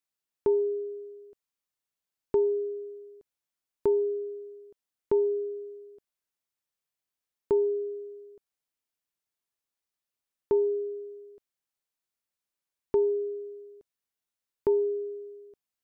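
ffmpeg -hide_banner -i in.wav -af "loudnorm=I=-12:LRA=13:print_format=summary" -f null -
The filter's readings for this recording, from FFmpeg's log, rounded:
Input Integrated:    -29.4 LUFS
Input True Peak:     -16.3 dBTP
Input LRA:             3.1 LU
Input Threshold:     -41.3 LUFS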